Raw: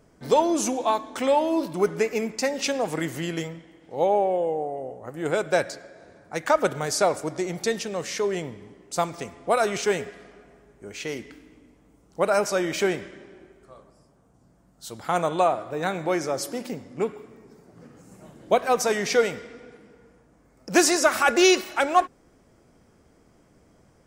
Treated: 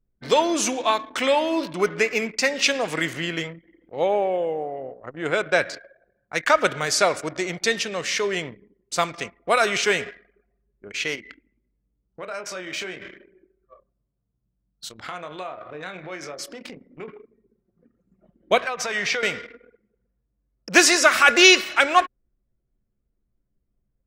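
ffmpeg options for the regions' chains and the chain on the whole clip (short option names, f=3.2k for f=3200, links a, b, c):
-filter_complex "[0:a]asettb=1/sr,asplit=3[a][b][c];[a]atrim=end=3.134[d];[b]atrim=start=3.13:end=5.74,asetpts=PTS-STARTPTS,afade=t=in:d=0.004:c=qsin,afade=t=out:st=2.606:d=0.004:c=qsin,highshelf=f=3.5k:g=-6.5,acompressor=mode=upward:threshold=-38dB:ratio=2.5:attack=3.2:release=140:knee=2.83:detection=peak[e];[c]atrim=start=5.736[f];[d][e]acrossfade=d=0.004:c1=hsin:c2=qsin[g];[g][f]acrossfade=d=0.004:c1=qsin:c2=hsin,asettb=1/sr,asplit=3[h][i][j];[h]atrim=end=11.154[k];[i]atrim=start=11.15:end=17.08,asetpts=PTS-STARTPTS,afade=t=in:d=0.004:c=qsin,afade=t=out:st=5.926:d=0.004:c=qsin,acompressor=threshold=-37dB:ratio=3:attack=3.2:release=140:knee=1:detection=peak,asplit=2[l][m];[m]adelay=27,volume=-8dB[n];[l][n]amix=inputs=2:normalize=0,atrim=end_sample=261513[o];[j]atrim=start=17.076[p];[k][o]acrossfade=d=0.004:c1=hsin:c2=qsin[q];[q][p]acrossfade=d=0.004:c1=qsin:c2=hsin,asettb=1/sr,asplit=3[r][s][t];[r]atrim=end=18.644[u];[s]atrim=start=18.64:end=19.23,asetpts=PTS-STARTPTS,afade=t=in:d=0.004:c=qsin,afade=t=out:st=0.586:d=0.004:c=qsin,lowpass=f=3.6k:p=1,equalizer=f=300:t=o:w=0.92:g=-9.5,acompressor=threshold=-26dB:ratio=8:attack=3.2:release=140:knee=1:detection=peak[v];[t]atrim=start=19.226[w];[u][v]acrossfade=d=0.004:c1=hsin:c2=qsin[x];[x][w]acrossfade=d=0.004:c1=qsin:c2=hsin,equalizer=f=2.6k:t=o:w=2.6:g=12,anlmdn=3.98,equalizer=f=830:t=o:w=0.31:g=-5.5,volume=-1.5dB"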